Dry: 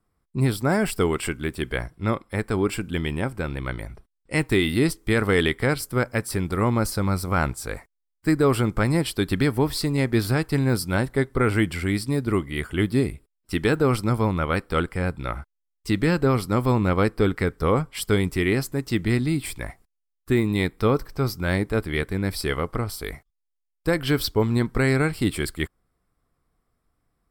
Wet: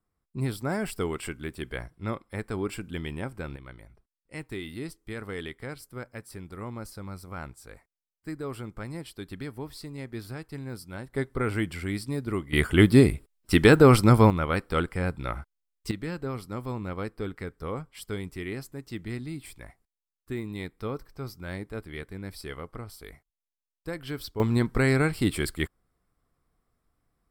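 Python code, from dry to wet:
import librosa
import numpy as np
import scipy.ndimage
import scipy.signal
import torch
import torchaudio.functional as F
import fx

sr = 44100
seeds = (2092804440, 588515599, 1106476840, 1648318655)

y = fx.gain(x, sr, db=fx.steps((0.0, -8.0), (3.56, -16.0), (11.13, -7.0), (12.53, 5.0), (14.3, -3.0), (15.91, -13.0), (24.4, -2.0)))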